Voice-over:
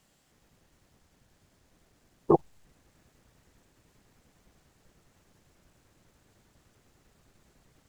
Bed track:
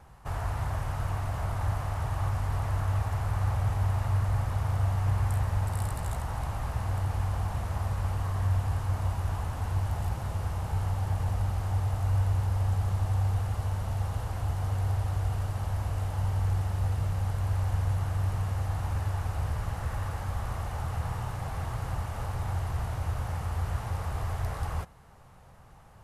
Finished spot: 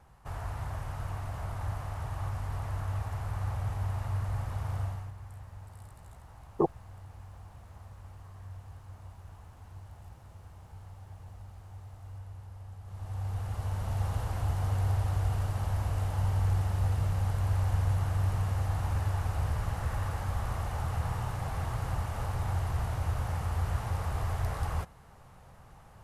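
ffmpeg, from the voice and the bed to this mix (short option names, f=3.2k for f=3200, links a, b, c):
-filter_complex "[0:a]adelay=4300,volume=-5dB[a];[1:a]volume=13dB,afade=t=out:st=4.79:d=0.33:silence=0.223872,afade=t=in:st=12.84:d=1.25:silence=0.11885[b];[a][b]amix=inputs=2:normalize=0"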